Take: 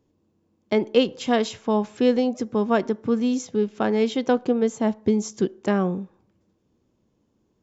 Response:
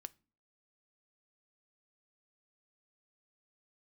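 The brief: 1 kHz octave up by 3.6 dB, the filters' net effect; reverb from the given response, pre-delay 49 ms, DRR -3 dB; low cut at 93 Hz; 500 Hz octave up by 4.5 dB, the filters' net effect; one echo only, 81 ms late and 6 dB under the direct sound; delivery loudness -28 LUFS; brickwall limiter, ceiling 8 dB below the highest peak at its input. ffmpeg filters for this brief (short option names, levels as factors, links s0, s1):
-filter_complex "[0:a]highpass=93,equalizer=f=500:t=o:g=4.5,equalizer=f=1000:t=o:g=3,alimiter=limit=0.316:level=0:latency=1,aecho=1:1:81:0.501,asplit=2[s0][s1];[1:a]atrim=start_sample=2205,adelay=49[s2];[s1][s2]afir=irnorm=-1:irlink=0,volume=2.66[s3];[s0][s3]amix=inputs=2:normalize=0,volume=0.266"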